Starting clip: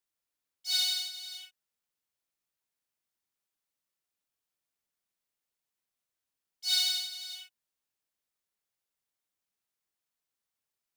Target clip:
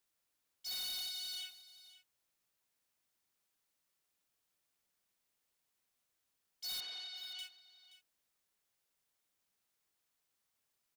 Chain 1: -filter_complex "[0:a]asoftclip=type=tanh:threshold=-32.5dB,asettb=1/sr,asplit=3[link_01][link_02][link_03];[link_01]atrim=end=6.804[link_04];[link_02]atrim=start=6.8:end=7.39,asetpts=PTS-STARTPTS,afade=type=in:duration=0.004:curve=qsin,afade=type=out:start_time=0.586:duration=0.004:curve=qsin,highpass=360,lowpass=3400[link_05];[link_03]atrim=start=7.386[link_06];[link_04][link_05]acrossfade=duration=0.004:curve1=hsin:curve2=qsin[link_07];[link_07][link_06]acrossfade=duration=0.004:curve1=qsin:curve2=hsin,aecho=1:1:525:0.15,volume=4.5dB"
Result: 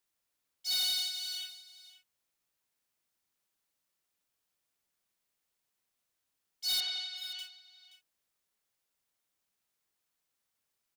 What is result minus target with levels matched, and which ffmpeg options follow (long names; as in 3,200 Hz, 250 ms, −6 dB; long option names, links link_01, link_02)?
soft clipping: distortion −6 dB
-filter_complex "[0:a]asoftclip=type=tanh:threshold=-44.5dB,asettb=1/sr,asplit=3[link_01][link_02][link_03];[link_01]atrim=end=6.804[link_04];[link_02]atrim=start=6.8:end=7.39,asetpts=PTS-STARTPTS,afade=type=in:duration=0.004:curve=qsin,afade=type=out:start_time=0.586:duration=0.004:curve=qsin,highpass=360,lowpass=3400[link_05];[link_03]atrim=start=7.386[link_06];[link_04][link_05]acrossfade=duration=0.004:curve1=hsin:curve2=qsin[link_07];[link_07][link_06]acrossfade=duration=0.004:curve1=qsin:curve2=hsin,aecho=1:1:525:0.15,volume=4.5dB"